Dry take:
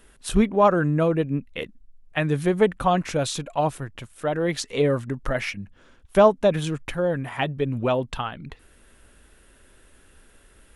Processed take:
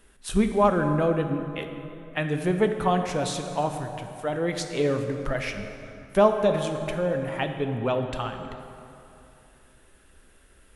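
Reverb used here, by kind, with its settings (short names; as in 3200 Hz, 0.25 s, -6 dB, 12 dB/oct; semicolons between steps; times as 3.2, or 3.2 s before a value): plate-style reverb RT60 2.9 s, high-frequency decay 0.6×, DRR 5.5 dB; gain -3.5 dB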